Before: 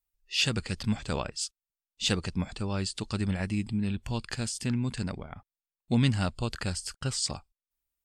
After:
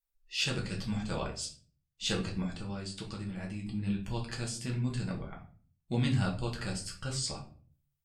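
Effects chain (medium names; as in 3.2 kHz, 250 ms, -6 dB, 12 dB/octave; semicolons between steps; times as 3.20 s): 2.46–3.65 s: compression 5:1, threshold -32 dBFS, peak gain reduction 7.5 dB; simulated room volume 33 m³, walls mixed, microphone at 0.64 m; trim -7.5 dB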